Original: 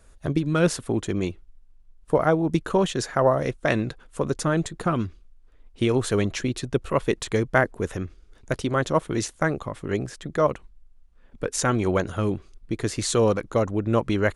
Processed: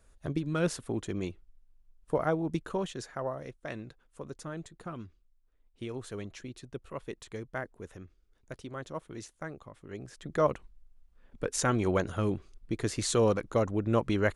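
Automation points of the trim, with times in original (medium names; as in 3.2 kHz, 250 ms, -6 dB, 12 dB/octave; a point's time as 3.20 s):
2.42 s -8.5 dB
3.46 s -17 dB
9.92 s -17 dB
10.35 s -5 dB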